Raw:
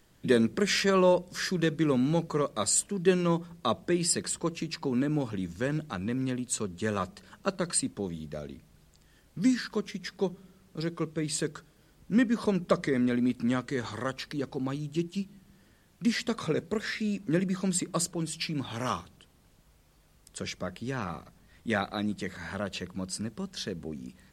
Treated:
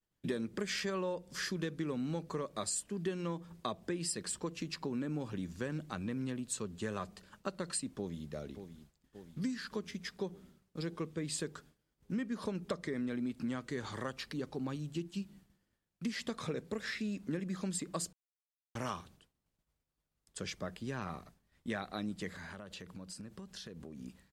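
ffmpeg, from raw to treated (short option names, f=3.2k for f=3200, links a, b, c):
-filter_complex "[0:a]asplit=2[a][b];[b]afade=t=in:st=7.87:d=0.01,afade=t=out:st=8.3:d=0.01,aecho=0:1:580|1160|1740|2320|2900|3480|4060|4640|5220|5800:0.281838|0.197287|0.138101|0.0966705|0.0676694|0.0473686|0.033158|0.0232106|0.0162474|0.0113732[c];[a][c]amix=inputs=2:normalize=0,asettb=1/sr,asplit=3[d][e][f];[d]atrim=end=22.354[g];[e]atrim=start=22.35:end=23.99,asetpts=PTS-STARTPTS,afade=t=in:d=0.004:c=qsin,afade=t=out:st=1.636:d=0.004:c=qsin,acompressor=threshold=-38dB:ratio=16:attack=3.2:release=140:knee=1:detection=peak[h];[f]atrim=start=23.986[i];[g][h]acrossfade=d=0.004:c1=hsin:c2=qsin[j];[j][i]acrossfade=d=0.004:c1=qsin:c2=hsin,asplit=3[k][l][m];[k]atrim=end=18.13,asetpts=PTS-STARTPTS,afade=t=out:st=18.126:d=0.004:c=hsin[n];[l]atrim=start=18.13:end=18.75,asetpts=PTS-STARTPTS,volume=0[o];[m]atrim=start=18.75,asetpts=PTS-STARTPTS,afade=t=in:d=0.004:c=hsin[p];[n][o][p]concat=n=3:v=0:a=1,agate=range=-33dB:threshold=-49dB:ratio=3:detection=peak,acompressor=threshold=-29dB:ratio=6,volume=-4.5dB"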